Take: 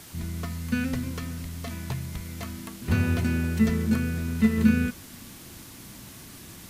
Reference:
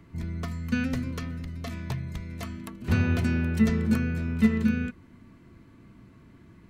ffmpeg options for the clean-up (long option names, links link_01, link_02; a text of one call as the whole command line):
ffmpeg -i in.wav -af "afwtdn=0.005,asetnsamples=nb_out_samples=441:pad=0,asendcmd='4.58 volume volume -4.5dB',volume=0dB" out.wav